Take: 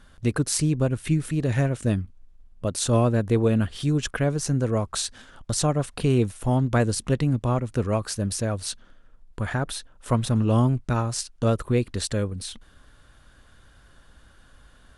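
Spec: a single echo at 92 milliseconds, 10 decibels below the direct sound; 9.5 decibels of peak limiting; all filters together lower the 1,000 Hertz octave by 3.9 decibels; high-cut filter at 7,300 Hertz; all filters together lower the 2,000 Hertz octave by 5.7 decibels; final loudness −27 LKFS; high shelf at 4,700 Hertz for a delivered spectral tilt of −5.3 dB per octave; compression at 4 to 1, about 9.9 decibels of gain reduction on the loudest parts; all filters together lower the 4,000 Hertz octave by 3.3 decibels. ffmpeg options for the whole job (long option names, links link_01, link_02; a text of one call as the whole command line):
ffmpeg -i in.wav -af "lowpass=7300,equalizer=frequency=1000:width_type=o:gain=-4,equalizer=frequency=2000:width_type=o:gain=-6,equalizer=frequency=4000:width_type=o:gain=-6.5,highshelf=frequency=4700:gain=7.5,acompressor=threshold=-29dB:ratio=4,alimiter=limit=-24dB:level=0:latency=1,aecho=1:1:92:0.316,volume=7.5dB" out.wav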